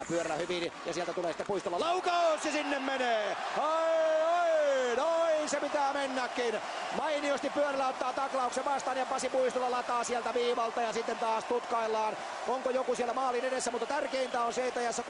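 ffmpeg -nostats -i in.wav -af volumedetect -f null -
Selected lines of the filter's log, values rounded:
mean_volume: -31.2 dB
max_volume: -16.4 dB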